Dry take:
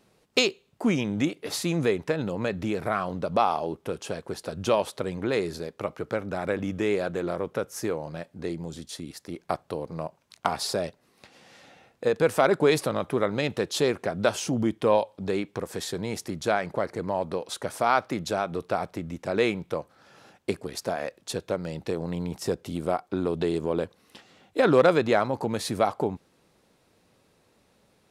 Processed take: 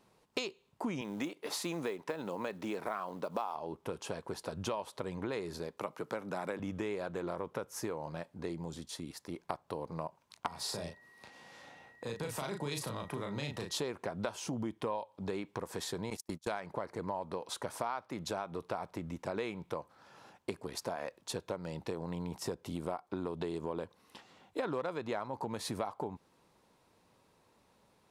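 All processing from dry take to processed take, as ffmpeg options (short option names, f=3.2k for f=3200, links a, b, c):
-filter_complex "[0:a]asettb=1/sr,asplit=3[a][b][c];[a]atrim=end=1.014[d];[b]atrim=start=1.01:end=3.55,asetpts=PTS-STARTPTS,afade=t=in:d=0.004:c=qsin,afade=t=out:st=2.536:d=0.004:c=qsin,highpass=240,acrusher=bits=7:mode=log:mix=0:aa=0.000001[e];[c]atrim=start=3.546[f];[d][e]acrossfade=d=0.004:c1=hsin:c2=qsin[g];[g][f]acrossfade=d=0.004:c1=qsin:c2=hsin,asettb=1/sr,asplit=3[h][i][j];[h]atrim=end=5.774[k];[i]atrim=start=5.77:end=6.6,asetpts=PTS-STARTPTS,afade=t=in:d=0.004:c=qsin,afade=t=out:st=0.826:d=0.004:c=qsin,highpass=f=130:w=0.5412,highpass=f=130:w=1.3066,highshelf=f=5.8k:g=8[l];[j]atrim=start=6.596[m];[k][l]acrossfade=d=0.004:c1=hsin:c2=qsin[n];[n][m]acrossfade=d=0.004:c1=qsin:c2=hsin,asettb=1/sr,asplit=3[o][p][q];[o]atrim=end=10.474[r];[p]atrim=start=10.47:end=13.78,asetpts=PTS-STARTPTS,afade=t=in:d=0.004:c=qsin,afade=t=out:st=3.306:d=0.004:c=qsin,acrossover=split=180|3000[s][t][u];[t]acompressor=threshold=-37dB:ratio=3:attack=3.2:release=140:knee=2.83:detection=peak[v];[s][v][u]amix=inputs=3:normalize=0,aeval=exprs='val(0)+0.00501*sin(2*PI*1900*n/s)':c=same,asplit=2[w][x];[x]adelay=35,volume=-4.5dB[y];[w][y]amix=inputs=2:normalize=0,atrim=end_sample=145971[z];[q]atrim=start=13.776[aa];[r][z]acrossfade=d=0.004:c1=hsin:c2=qsin[ab];[ab][aa]acrossfade=d=0.004:c1=qsin:c2=hsin,asettb=1/sr,asplit=3[ac][ad][ae];[ac]atrim=end=16.104[af];[ad]atrim=start=16.1:end=16.6,asetpts=PTS-STARTPTS,afade=t=in:d=0.004:c=qsin,afade=t=out:st=0.496:d=0.004:c=qsin,agate=range=-37dB:threshold=-34dB:ratio=16:release=100:detection=peak,highshelf=f=4.2k:g=11[ag];[ae]atrim=start=16.596[ah];[af][ag]acrossfade=d=0.004:c1=hsin:c2=qsin[ai];[ai][ah]acrossfade=d=0.004:c1=qsin:c2=hsin,equalizer=f=970:w=3.2:g=8.5,acompressor=threshold=-28dB:ratio=6,volume=-5.5dB"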